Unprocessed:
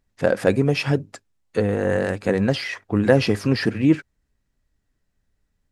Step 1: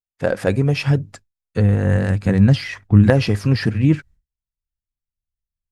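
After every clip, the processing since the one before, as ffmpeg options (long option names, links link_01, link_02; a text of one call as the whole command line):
ffmpeg -i in.wav -af "agate=range=-33dB:threshold=-39dB:ratio=3:detection=peak,asubboost=boost=11.5:cutoff=150" out.wav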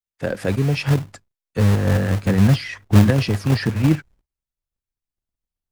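ffmpeg -i in.wav -filter_complex "[0:a]acrossover=split=180|420|1600[link_01][link_02][link_03][link_04];[link_01]acrusher=bits=2:mode=log:mix=0:aa=0.000001[link_05];[link_03]alimiter=limit=-18dB:level=0:latency=1:release=426[link_06];[link_05][link_02][link_06][link_04]amix=inputs=4:normalize=0,volume=-1.5dB" out.wav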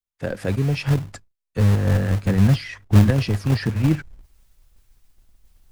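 ffmpeg -i in.wav -af "lowshelf=frequency=64:gain=11.5,areverse,acompressor=mode=upward:threshold=-26dB:ratio=2.5,areverse,volume=-3.5dB" out.wav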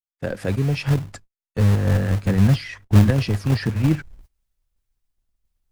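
ffmpeg -i in.wav -af "agate=range=-18dB:threshold=-45dB:ratio=16:detection=peak" out.wav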